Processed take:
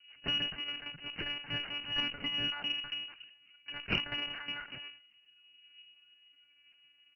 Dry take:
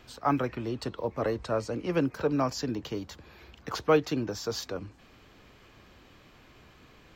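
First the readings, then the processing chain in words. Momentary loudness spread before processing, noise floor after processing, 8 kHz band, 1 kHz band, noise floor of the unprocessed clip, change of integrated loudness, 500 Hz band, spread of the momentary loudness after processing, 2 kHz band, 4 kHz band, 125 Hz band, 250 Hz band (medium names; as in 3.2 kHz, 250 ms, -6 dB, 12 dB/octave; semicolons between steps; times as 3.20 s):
13 LU, -67 dBFS, under -20 dB, -14.5 dB, -57 dBFS, -4.5 dB, -22.0 dB, 13 LU, +2.5 dB, +10.0 dB, -12.5 dB, -16.0 dB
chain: bit-reversed sample order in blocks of 128 samples; steep high-pass 170 Hz 96 dB/octave; band-stop 430 Hz, Q 12; level-controlled noise filter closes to 680 Hz, open at -23 dBFS; comb 4.8 ms, depth 98%; phaser 0.35 Hz, delay 2.7 ms, feedback 43%; monotone LPC vocoder at 8 kHz 290 Hz; frequency inversion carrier 2.9 kHz; Chebyshev shaper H 2 -24 dB, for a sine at -18.5 dBFS; decay stretcher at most 120 dB/s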